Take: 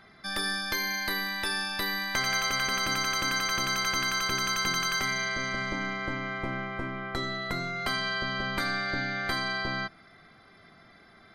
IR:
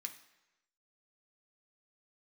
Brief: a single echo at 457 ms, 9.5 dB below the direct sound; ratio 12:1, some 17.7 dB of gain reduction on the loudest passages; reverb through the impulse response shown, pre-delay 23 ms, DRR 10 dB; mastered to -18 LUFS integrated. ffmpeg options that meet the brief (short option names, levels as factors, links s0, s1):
-filter_complex "[0:a]acompressor=threshold=0.00708:ratio=12,aecho=1:1:457:0.335,asplit=2[s0][s1];[1:a]atrim=start_sample=2205,adelay=23[s2];[s1][s2]afir=irnorm=-1:irlink=0,volume=0.473[s3];[s0][s3]amix=inputs=2:normalize=0,volume=21.1"